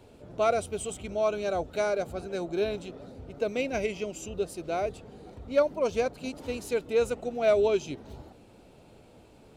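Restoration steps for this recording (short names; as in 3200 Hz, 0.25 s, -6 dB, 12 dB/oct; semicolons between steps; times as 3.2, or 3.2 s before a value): clip repair -14.5 dBFS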